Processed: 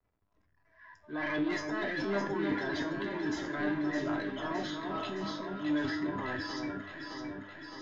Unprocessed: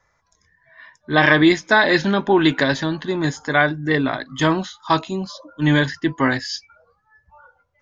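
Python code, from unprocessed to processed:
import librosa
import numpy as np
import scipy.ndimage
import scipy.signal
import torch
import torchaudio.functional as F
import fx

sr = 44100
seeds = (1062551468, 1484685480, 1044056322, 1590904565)

p1 = fx.spec_quant(x, sr, step_db=30)
p2 = p1 + 0.56 * np.pad(p1, (int(3.0 * sr / 1000.0), 0))[:len(p1)]
p3 = fx.over_compress(p2, sr, threshold_db=-25.0, ratio=-1.0)
p4 = p2 + (p3 * 10.0 ** (-1.5 / 20.0))
p5 = fx.transient(p4, sr, attack_db=-9, sustain_db=10)
p6 = 10.0 ** (-10.5 / 20.0) * np.tanh(p5 / 10.0 ** (-10.5 / 20.0))
p7 = fx.comb_fb(p6, sr, f0_hz=100.0, decay_s=0.42, harmonics='all', damping=0.0, mix_pct=80)
p8 = fx.backlash(p7, sr, play_db=-53.5)
p9 = fx.air_absorb(p8, sr, metres=200.0)
p10 = fx.echo_alternate(p9, sr, ms=307, hz=1500.0, feedback_pct=82, wet_db=-4.5)
y = p10 * 10.0 ** (-8.5 / 20.0)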